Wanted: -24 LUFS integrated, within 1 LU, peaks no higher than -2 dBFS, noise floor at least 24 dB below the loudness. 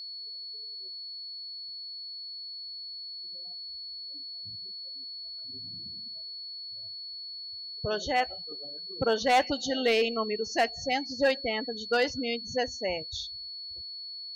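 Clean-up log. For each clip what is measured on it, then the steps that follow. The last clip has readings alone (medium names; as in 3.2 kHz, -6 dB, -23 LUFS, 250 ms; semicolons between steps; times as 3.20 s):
steady tone 4.4 kHz; tone level -38 dBFS; loudness -32.0 LUFS; peak level -17.0 dBFS; loudness target -24.0 LUFS
-> band-stop 4.4 kHz, Q 30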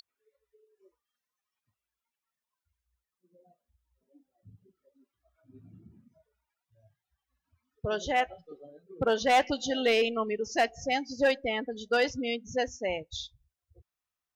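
steady tone not found; loudness -29.0 LUFS; peak level -17.5 dBFS; loudness target -24.0 LUFS
-> trim +5 dB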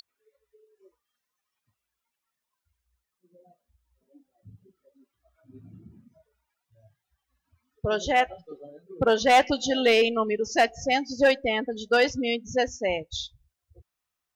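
loudness -24.0 LUFS; peak level -12.5 dBFS; noise floor -85 dBFS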